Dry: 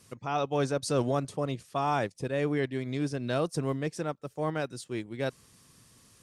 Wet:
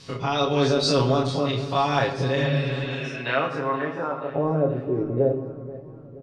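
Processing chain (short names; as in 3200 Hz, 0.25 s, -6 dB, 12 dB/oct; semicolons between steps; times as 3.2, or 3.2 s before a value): spectral dilation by 60 ms; 2.84–4.33 weighting filter A; 2.4–3.17 spectral repair 240–5100 Hz both; comb 7.3 ms, depth 75%; in parallel at +2.5 dB: compressor, threshold -35 dBFS, peak gain reduction 17 dB; on the sum: low-pass sweep 4400 Hz -> 450 Hz, 2.73–4.78; on a send: feedback echo 0.479 s, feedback 50%, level -17 dB; on the sum: shoebox room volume 430 m³, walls mixed, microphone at 0.62 m; gain -1.5 dB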